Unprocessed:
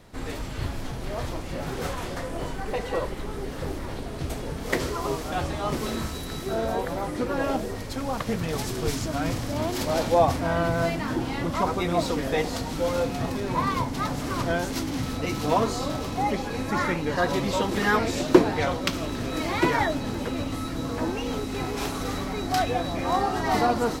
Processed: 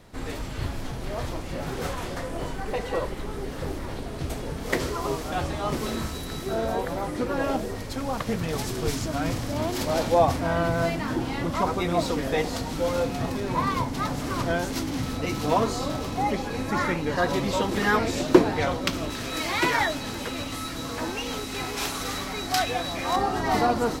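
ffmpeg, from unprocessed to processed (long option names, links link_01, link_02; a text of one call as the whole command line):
ffmpeg -i in.wav -filter_complex "[0:a]asettb=1/sr,asplit=3[link_01][link_02][link_03];[link_01]atrim=end=19.104[link_04];[link_02]atrim=start=19.1:end=23.16,asetpts=PTS-STARTPTS,afade=type=in:duration=0.004:curve=qsin,afade=type=out:start_time=4.056:duration=0.004:curve=qsin,tiltshelf=frequency=970:gain=-5.5[link_05];[link_03]atrim=start=23.156[link_06];[link_04][link_05]acrossfade=duration=0.004:curve1=hsin:curve2=qsin[link_07];[link_07][link_06]acrossfade=duration=0.004:curve1=qsin:curve2=hsin" out.wav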